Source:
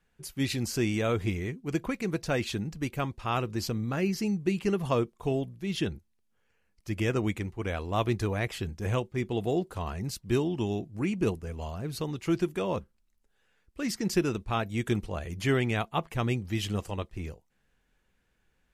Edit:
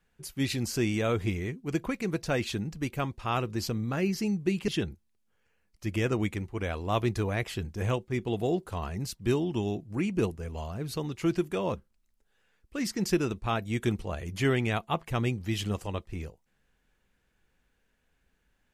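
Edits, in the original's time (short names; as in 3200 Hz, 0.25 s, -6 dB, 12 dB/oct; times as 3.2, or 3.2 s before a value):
4.68–5.72 cut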